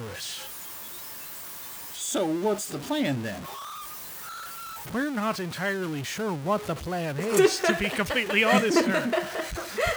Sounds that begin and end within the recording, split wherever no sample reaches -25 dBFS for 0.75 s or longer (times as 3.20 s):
2.03–3.28 s